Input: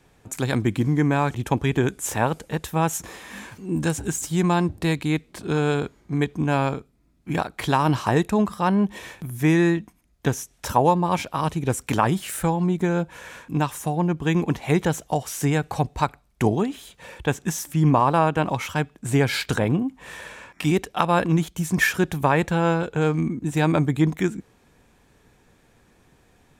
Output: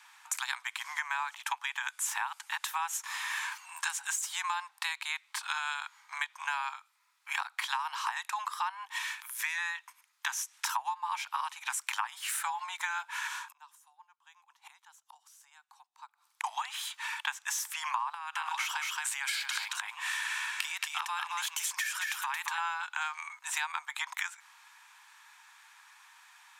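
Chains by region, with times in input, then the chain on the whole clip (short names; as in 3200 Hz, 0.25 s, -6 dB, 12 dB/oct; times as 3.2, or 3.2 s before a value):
9.03–9.58 half-wave gain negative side -3 dB + bell 660 Hz -9 dB 1.1 oct
13.27–16.44 bell 2100 Hz -7.5 dB 1 oct + flipped gate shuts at -26 dBFS, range -31 dB
18.14–22.58 tilt shelf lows -4.5 dB, about 1300 Hz + compressor 16:1, threshold -26 dBFS + echo 0.223 s -4.5 dB
whole clip: steep high-pass 870 Hz 72 dB/oct; high shelf 10000 Hz -5.5 dB; compressor 10:1, threshold -38 dBFS; gain +7.5 dB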